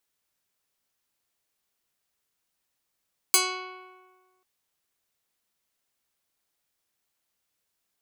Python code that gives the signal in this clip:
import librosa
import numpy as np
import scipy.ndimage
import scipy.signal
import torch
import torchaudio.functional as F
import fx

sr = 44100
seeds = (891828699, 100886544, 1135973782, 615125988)

y = fx.pluck(sr, length_s=1.09, note=66, decay_s=1.51, pick=0.2, brightness='medium')